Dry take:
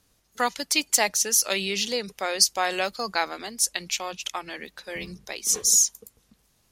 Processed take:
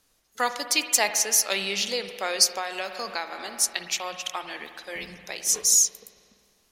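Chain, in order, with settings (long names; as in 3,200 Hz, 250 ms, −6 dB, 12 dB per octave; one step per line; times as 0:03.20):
parametric band 99 Hz −9.5 dB 2.7 octaves
convolution reverb RT60 2.2 s, pre-delay 51 ms, DRR 8.5 dB
0:02.53–0:03.53: downward compressor 3 to 1, threshold −28 dBFS, peak gain reduction 7.5 dB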